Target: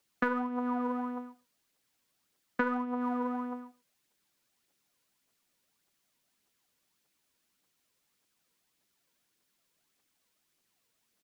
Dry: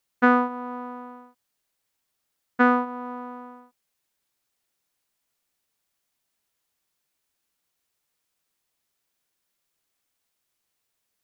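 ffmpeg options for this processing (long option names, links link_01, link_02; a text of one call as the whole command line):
ffmpeg -i in.wav -filter_complex "[0:a]equalizer=frequency=3500:width=0.4:gain=3.5,aecho=1:1:109:0.0794,acrossover=split=150|330|1700[link_01][link_02][link_03][link_04];[link_02]aeval=exprs='0.133*sin(PI/2*2*val(0)/0.133)':channel_layout=same[link_05];[link_03]aphaser=in_gain=1:out_gain=1:delay=2.2:decay=0.67:speed=1.7:type=triangular[link_06];[link_01][link_05][link_06][link_04]amix=inputs=4:normalize=0,acompressor=threshold=-26dB:ratio=16,volume=-1dB" out.wav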